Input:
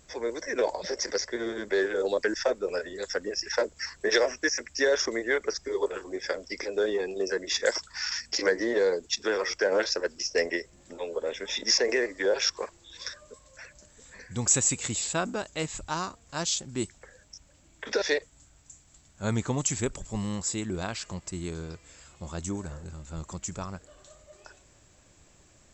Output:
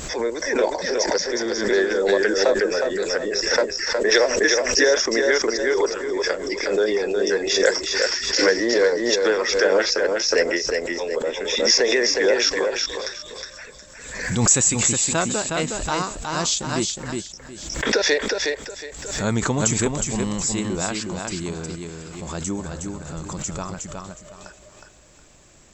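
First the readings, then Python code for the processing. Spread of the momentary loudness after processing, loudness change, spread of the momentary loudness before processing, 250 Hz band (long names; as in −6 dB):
15 LU, +8.5 dB, 15 LU, +8.5 dB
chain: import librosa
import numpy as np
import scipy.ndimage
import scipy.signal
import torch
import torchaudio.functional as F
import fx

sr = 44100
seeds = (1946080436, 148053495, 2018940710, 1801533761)

y = fx.peak_eq(x, sr, hz=88.0, db=-8.0, octaves=0.51)
y = fx.echo_feedback(y, sr, ms=364, feedback_pct=26, wet_db=-4.5)
y = fx.pre_swell(y, sr, db_per_s=54.0)
y = F.gain(torch.from_numpy(y), 6.0).numpy()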